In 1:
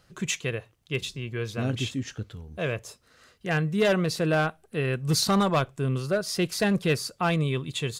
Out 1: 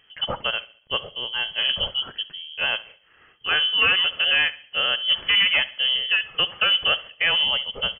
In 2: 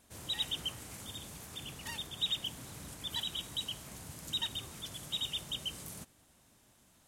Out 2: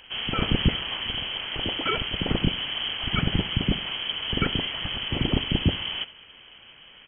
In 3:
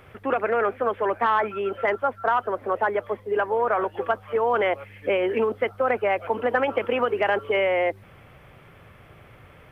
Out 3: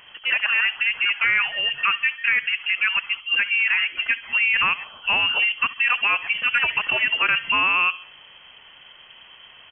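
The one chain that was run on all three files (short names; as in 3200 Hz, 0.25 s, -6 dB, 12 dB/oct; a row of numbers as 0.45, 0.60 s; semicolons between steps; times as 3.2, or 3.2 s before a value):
inverted band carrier 3200 Hz; in parallel at +1.5 dB: limiter -16.5 dBFS; on the sum: feedback echo 69 ms, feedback 44%, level -18.5 dB; dynamic EQ 1300 Hz, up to +5 dB, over -32 dBFS, Q 1.2; normalise peaks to -9 dBFS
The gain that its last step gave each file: -4.0, +11.5, -5.5 dB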